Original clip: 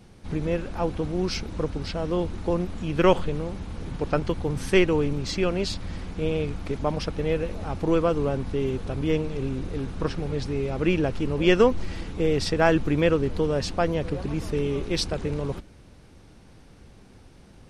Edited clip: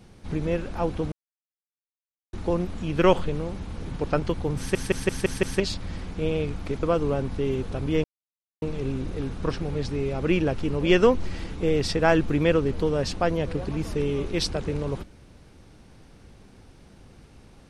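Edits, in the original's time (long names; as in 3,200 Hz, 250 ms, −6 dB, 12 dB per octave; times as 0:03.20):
0:01.12–0:02.33: silence
0:04.58: stutter in place 0.17 s, 6 plays
0:06.83–0:07.98: remove
0:09.19: splice in silence 0.58 s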